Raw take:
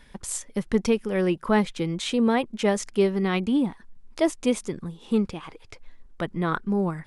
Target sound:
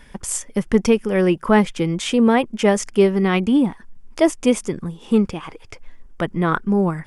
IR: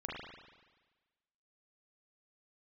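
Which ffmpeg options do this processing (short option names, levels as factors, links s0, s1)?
-af "equalizer=f=4000:w=6.4:g=-10.5,volume=2.11"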